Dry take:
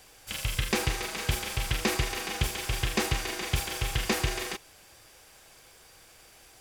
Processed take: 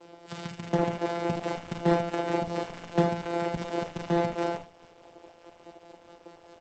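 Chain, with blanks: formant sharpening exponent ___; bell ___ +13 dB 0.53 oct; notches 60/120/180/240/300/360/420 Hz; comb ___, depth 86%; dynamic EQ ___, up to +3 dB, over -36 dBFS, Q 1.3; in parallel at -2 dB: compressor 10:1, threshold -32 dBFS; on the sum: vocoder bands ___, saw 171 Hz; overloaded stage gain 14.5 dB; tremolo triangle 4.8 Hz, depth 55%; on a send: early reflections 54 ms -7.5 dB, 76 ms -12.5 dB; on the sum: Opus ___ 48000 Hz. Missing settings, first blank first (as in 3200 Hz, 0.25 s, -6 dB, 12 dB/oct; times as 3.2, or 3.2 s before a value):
1.5, 520 Hz, 4.4 ms, 1100 Hz, 4, 12 kbps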